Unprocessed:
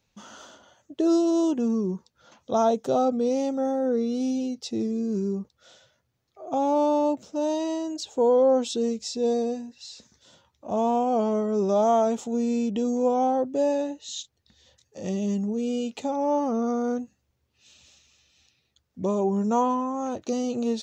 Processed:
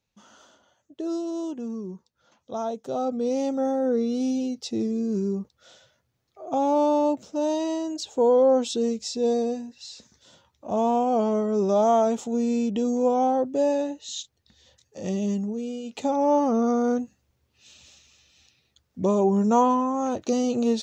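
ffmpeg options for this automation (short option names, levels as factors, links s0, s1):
-af "volume=3.98,afade=t=in:st=2.83:d=0.69:silence=0.354813,afade=t=out:st=15.25:d=0.58:silence=0.375837,afade=t=in:st=15.83:d=0.23:silence=0.281838"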